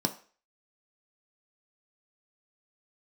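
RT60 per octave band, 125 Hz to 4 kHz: 0.30, 0.35, 0.40, 0.40, 0.40, 0.40 seconds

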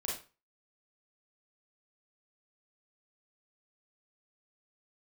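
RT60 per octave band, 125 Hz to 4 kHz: 0.35, 0.30, 0.30, 0.35, 0.30, 0.30 seconds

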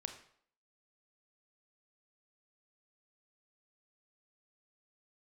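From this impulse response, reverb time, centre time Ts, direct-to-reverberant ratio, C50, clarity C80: 0.60 s, 14 ms, 6.0 dB, 9.0 dB, 12.5 dB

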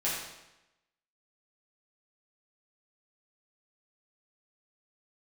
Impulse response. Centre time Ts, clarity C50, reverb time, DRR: 63 ms, 0.5 dB, 0.95 s, −8.5 dB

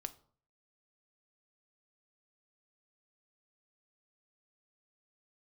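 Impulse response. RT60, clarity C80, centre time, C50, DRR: 0.50 s, 22.0 dB, 4 ms, 17.5 dB, 10.0 dB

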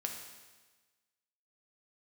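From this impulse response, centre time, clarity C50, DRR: 40 ms, 5.0 dB, 1.5 dB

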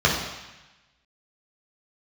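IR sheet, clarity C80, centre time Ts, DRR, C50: 6.0 dB, 49 ms, −5.5 dB, 3.0 dB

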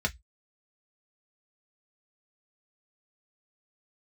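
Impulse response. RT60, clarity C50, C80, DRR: 0.10 s, 25.5 dB, 39.0 dB, 2.0 dB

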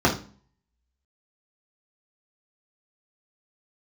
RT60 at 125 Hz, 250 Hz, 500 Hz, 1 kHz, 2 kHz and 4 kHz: 0.55, 0.55, 0.40, 0.40, 0.35, 0.35 seconds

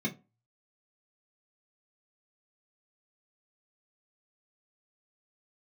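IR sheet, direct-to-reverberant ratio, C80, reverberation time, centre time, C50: −4.0 dB, 24.0 dB, 0.30 s, 10 ms, 17.0 dB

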